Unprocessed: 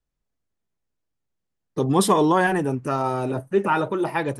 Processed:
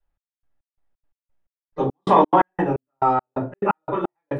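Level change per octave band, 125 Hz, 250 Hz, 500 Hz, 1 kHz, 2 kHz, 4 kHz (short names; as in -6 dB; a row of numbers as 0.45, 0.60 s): -3.5, -2.5, -0.5, +3.5, -7.0, -9.0 dB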